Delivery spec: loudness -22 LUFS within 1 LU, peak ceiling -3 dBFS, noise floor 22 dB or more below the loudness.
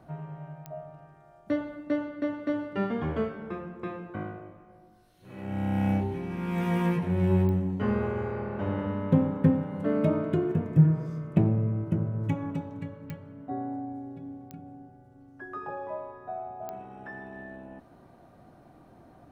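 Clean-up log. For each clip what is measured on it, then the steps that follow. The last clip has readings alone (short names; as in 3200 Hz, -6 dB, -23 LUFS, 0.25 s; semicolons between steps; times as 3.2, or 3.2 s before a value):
clicks 5; loudness -29.0 LUFS; peak -9.0 dBFS; loudness target -22.0 LUFS
-> de-click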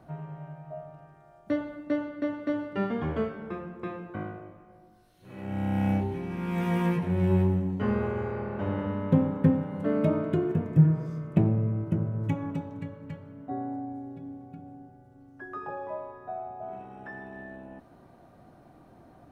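clicks 0; loudness -29.0 LUFS; peak -9.0 dBFS; loudness target -22.0 LUFS
-> gain +7 dB; limiter -3 dBFS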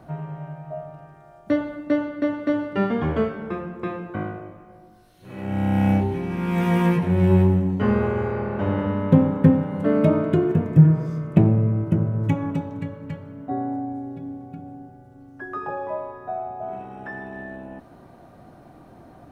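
loudness -22.5 LUFS; peak -3.0 dBFS; noise floor -49 dBFS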